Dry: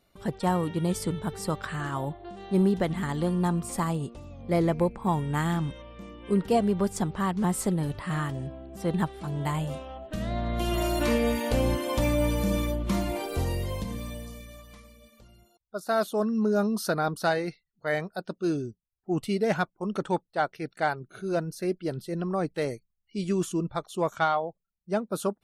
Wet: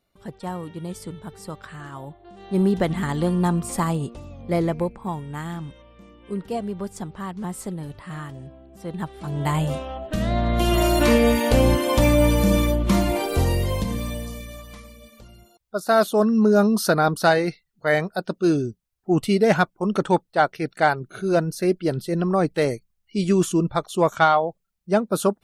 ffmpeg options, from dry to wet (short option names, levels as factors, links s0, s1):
-af "volume=7.5,afade=t=in:st=2.25:d=0.54:silence=0.298538,afade=t=out:st=4.16:d=1.05:silence=0.334965,afade=t=in:st=8.97:d=0.71:silence=0.237137"